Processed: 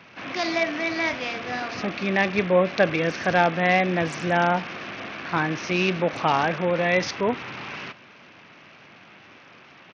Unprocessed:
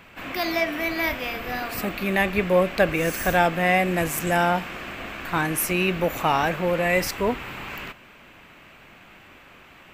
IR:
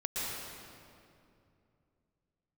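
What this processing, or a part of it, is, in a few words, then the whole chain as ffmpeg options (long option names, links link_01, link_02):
Bluetooth headset: -af "highpass=frequency=100:width=0.5412,highpass=frequency=100:width=1.3066,aresample=16000,aresample=44100" -ar 48000 -c:a sbc -b:a 64k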